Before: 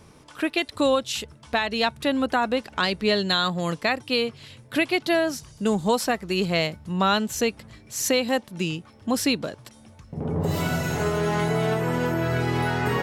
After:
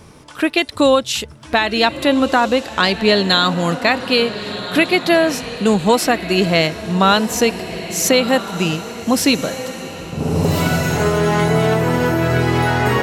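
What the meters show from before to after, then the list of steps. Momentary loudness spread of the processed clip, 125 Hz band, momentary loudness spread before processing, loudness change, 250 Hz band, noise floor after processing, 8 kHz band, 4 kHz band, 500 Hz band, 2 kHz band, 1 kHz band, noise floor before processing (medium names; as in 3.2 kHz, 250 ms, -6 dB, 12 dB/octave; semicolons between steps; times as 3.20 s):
8 LU, +8.0 dB, 8 LU, +8.0 dB, +8.0 dB, -38 dBFS, +8.5 dB, +8.5 dB, +8.5 dB, +8.5 dB, +8.5 dB, -51 dBFS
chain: echo that smears into a reverb 1389 ms, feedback 42%, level -11.5 dB; trim +8 dB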